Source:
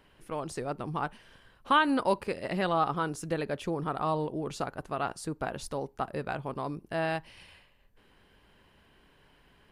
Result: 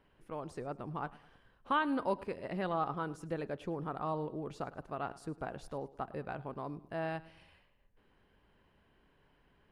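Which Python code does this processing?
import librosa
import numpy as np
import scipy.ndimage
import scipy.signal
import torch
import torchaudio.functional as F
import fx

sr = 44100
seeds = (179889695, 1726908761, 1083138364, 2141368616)

y = fx.high_shelf(x, sr, hz=3000.0, db=-11.0)
y = fx.echo_feedback(y, sr, ms=105, feedback_pct=45, wet_db=-19.5)
y = y * 10.0 ** (-6.0 / 20.0)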